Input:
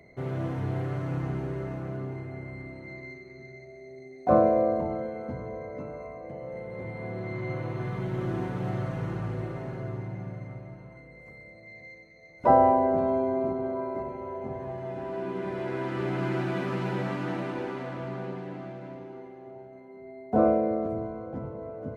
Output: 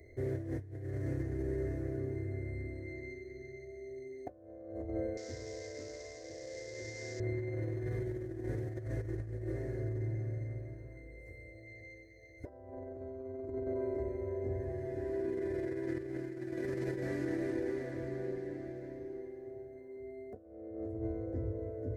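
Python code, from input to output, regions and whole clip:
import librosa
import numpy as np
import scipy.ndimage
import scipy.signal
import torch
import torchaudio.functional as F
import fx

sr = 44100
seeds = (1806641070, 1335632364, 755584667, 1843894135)

y = fx.chain(x, sr, fx.cvsd(bps=32000),
    fx.tilt_eq(slope=3.5), at=(5.17, 7.2))
y = fx.curve_eq(y, sr, hz=(100.0, 170.0, 340.0, 590.0, 840.0, 1300.0, 1800.0, 2800.0, 5100.0, 8700.0), db=(0, -28, -5, -13, -26, -28, -8, -26, -10, -6))
y = fx.over_compress(y, sr, threshold_db=-42.0, ratio=-0.5)
y = F.gain(torch.from_numpy(y), 5.0).numpy()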